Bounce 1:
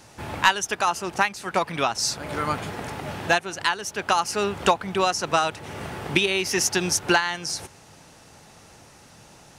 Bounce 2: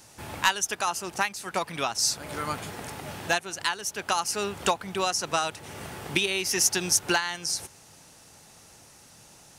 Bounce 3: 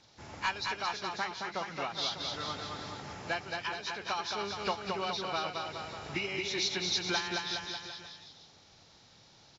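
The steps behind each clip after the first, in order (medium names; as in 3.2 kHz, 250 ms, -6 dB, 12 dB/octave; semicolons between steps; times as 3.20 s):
treble shelf 5.3 kHz +11.5 dB; trim -6 dB
knee-point frequency compression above 1.7 kHz 1.5:1; bouncing-ball echo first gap 220 ms, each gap 0.9×, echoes 5; trim -8.5 dB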